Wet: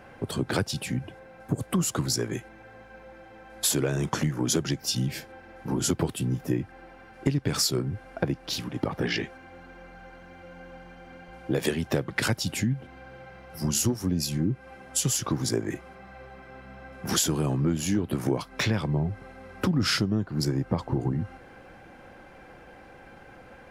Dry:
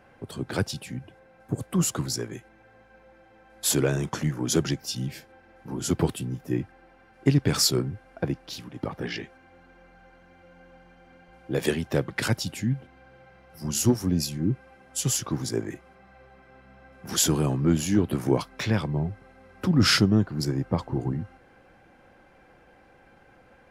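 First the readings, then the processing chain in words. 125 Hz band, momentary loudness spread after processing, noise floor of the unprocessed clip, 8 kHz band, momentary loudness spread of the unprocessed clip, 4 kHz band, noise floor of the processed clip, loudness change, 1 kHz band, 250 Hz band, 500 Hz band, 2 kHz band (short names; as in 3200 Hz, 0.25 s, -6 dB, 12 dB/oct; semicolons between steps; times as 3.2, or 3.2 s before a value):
-1.0 dB, 21 LU, -56 dBFS, -0.5 dB, 15 LU, -1.0 dB, -50 dBFS, -1.5 dB, +0.5 dB, -1.5 dB, -1.5 dB, 0.0 dB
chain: compressor 5:1, threshold -30 dBFS, peak gain reduction 14 dB; gain +7 dB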